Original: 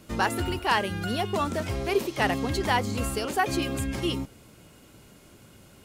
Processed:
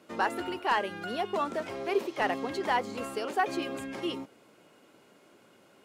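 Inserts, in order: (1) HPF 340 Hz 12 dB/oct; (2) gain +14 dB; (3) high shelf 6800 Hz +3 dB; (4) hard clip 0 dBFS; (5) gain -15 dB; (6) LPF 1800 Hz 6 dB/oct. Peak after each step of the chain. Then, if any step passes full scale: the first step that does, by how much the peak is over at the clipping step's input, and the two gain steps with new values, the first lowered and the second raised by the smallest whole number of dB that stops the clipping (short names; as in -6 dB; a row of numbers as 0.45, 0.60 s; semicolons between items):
-9.5, +4.5, +5.0, 0.0, -15.0, -15.5 dBFS; step 2, 5.0 dB; step 2 +9 dB, step 5 -10 dB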